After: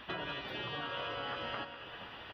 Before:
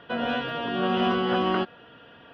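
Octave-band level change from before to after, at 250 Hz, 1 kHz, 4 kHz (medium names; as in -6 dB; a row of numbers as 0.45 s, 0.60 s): -21.5 dB, -14.0 dB, -8.0 dB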